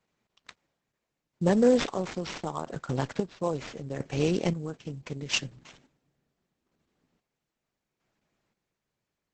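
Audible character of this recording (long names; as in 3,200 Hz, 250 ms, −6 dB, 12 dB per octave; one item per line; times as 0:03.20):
chopped level 0.75 Hz, depth 60%, duty 40%
aliases and images of a low sample rate 8,800 Hz, jitter 20%
Opus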